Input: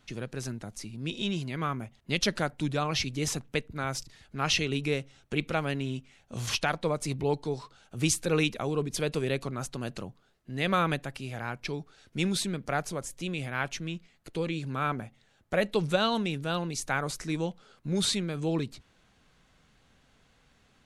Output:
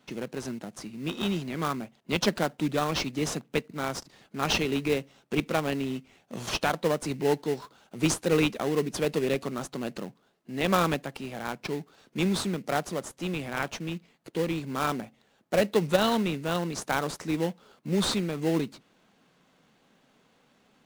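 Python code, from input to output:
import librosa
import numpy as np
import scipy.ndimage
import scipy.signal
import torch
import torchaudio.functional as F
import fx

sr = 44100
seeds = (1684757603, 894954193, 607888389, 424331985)

p1 = scipy.signal.sosfilt(scipy.signal.butter(4, 170.0, 'highpass', fs=sr, output='sos'), x)
p2 = fx.high_shelf(p1, sr, hz=5700.0, db=-4.0)
p3 = fx.sample_hold(p2, sr, seeds[0], rate_hz=2400.0, jitter_pct=20)
y = p2 + F.gain(torch.from_numpy(p3), -4.0).numpy()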